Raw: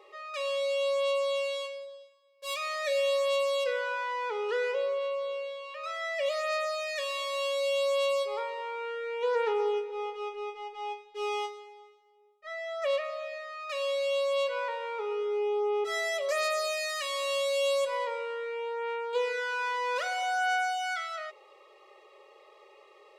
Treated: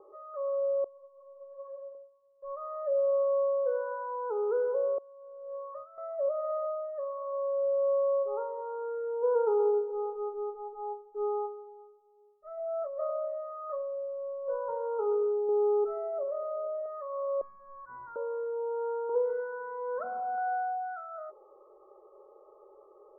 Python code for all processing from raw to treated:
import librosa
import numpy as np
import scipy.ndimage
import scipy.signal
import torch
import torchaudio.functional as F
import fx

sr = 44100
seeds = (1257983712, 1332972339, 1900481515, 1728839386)

y = fx.chain(x, sr, fx.highpass(hz=930.0, slope=6),
    fx.over_compress(threshold_db=-41.0, ratio=-0.5),
    fx.ensemble(), at=(0.84, 1.95))
y = fx.chain(y, sr, fx.highpass(hz=570.0, slope=12),
    fx.over_compress(threshold_db=-42.0, ratio=-0.5), at=(4.98, 5.98))
y = fx.chain(y, sr, fx.hum_notches(base_hz=60, count=10),
    fx.over_compress(threshold_db=-34.0, ratio=-1.0),
    fx.doubler(ms=24.0, db=-8.5), at=(12.57, 15.49))
y = fx.chain(y, sr, fx.lowpass(hz=1200.0, slope=6),
    fx.comb_fb(f0_hz=290.0, decay_s=0.19, harmonics='all', damping=0.0, mix_pct=60),
    fx.env_flatten(amount_pct=100), at=(16.23, 16.86))
y = fx.chain(y, sr, fx.steep_highpass(hz=1300.0, slope=36),
    fx.leveller(passes=2), at=(17.41, 18.16))
y = fx.chain(y, sr, fx.zero_step(step_db=-34.5),
    fx.highpass(hz=670.0, slope=6),
    fx.comb(ms=4.5, depth=0.71), at=(19.09, 20.38))
y = scipy.signal.sosfilt(scipy.signal.butter(12, 1400.0, 'lowpass', fs=sr, output='sos'), y)
y = fx.tilt_shelf(y, sr, db=7.5, hz=640.0)